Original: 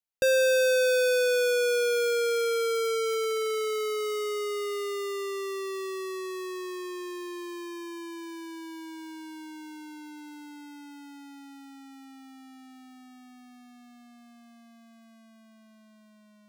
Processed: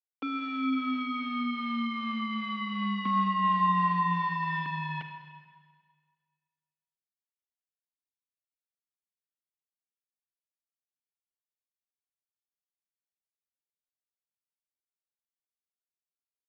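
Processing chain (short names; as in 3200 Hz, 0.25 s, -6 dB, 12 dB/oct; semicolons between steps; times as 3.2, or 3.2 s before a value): in parallel at -1.5 dB: compressor 6:1, threshold -41 dBFS, peak gain reduction 16.5 dB; on the sum: limiter -27 dBFS, peak gain reduction 10.5 dB; 3.05–4.66 small resonant body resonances 500/1300/2000 Hz, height 17 dB, ringing for 45 ms; bit-crush 5-bit; Schroeder reverb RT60 1.7 s, combs from 33 ms, DRR 6 dB; mistuned SSB -250 Hz 540–3500 Hz; gain -5 dB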